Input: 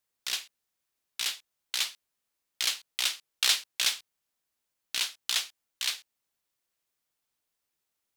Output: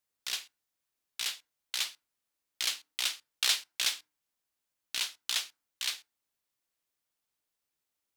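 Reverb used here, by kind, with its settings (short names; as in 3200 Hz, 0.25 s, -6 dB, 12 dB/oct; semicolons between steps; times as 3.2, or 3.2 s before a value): FDN reverb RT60 0.35 s, low-frequency decay 1.35×, high-frequency decay 0.6×, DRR 19 dB; gain -3 dB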